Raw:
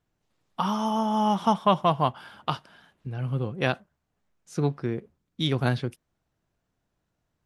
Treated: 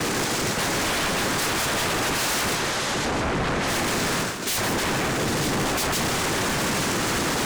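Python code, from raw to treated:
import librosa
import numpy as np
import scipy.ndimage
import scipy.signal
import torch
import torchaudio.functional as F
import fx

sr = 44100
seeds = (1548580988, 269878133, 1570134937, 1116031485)

p1 = np.sign(x) * np.sqrt(np.mean(np.square(x)))
p2 = fx.peak_eq(p1, sr, hz=2200.0, db=-9.0, octaves=0.77)
p3 = fx.resonator_bank(p2, sr, root=40, chord='sus4', decay_s=0.21)
p4 = fx.noise_vocoder(p3, sr, seeds[0], bands=3)
p5 = fx.fold_sine(p4, sr, drive_db=15, ceiling_db=-26.0)
p6 = fx.power_curve(p5, sr, exponent=0.5)
p7 = fx.air_absorb(p6, sr, metres=51.0, at=(2.55, 3.68))
p8 = p7 + fx.echo_single(p7, sr, ms=160, db=-8.0, dry=0)
y = p8 * 10.0 ** (2.0 / 20.0)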